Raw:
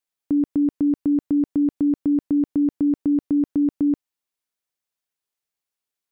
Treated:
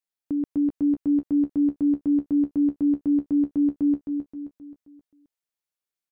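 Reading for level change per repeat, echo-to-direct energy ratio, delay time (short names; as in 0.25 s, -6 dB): -7.0 dB, -5.5 dB, 0.264 s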